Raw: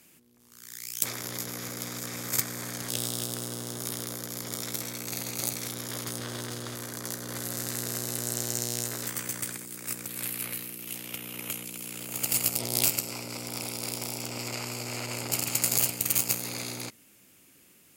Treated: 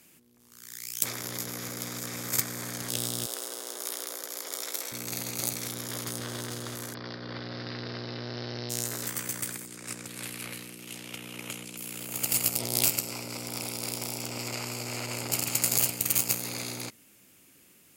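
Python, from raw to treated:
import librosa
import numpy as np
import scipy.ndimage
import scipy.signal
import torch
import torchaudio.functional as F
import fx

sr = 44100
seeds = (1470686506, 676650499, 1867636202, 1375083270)

y = fx.highpass(x, sr, hz=390.0, slope=24, at=(3.26, 4.92))
y = fx.steep_lowpass(y, sr, hz=5200.0, slope=96, at=(6.93, 8.69), fade=0.02)
y = fx.lowpass(y, sr, hz=8300.0, slope=12, at=(9.67, 11.77))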